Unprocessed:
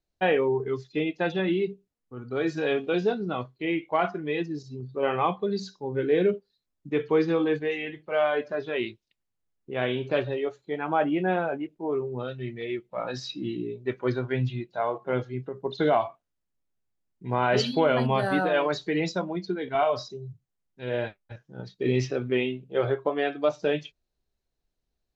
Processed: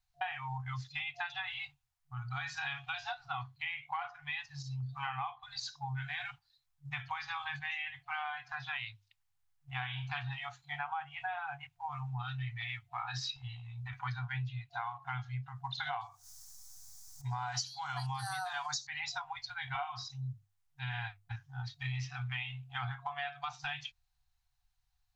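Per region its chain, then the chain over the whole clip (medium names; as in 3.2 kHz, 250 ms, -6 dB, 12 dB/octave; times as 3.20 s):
13.36–13.93 s: bass shelf 81 Hz +10.5 dB + compression 2.5:1, threshold -37 dBFS
16.01–18.87 s: resonant high shelf 4 kHz +14 dB, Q 3 + upward compressor, threshold -37 dBFS
whole clip: hum notches 50/100 Hz; FFT band-reject 140–710 Hz; compression 10:1, threshold -38 dBFS; trim +3 dB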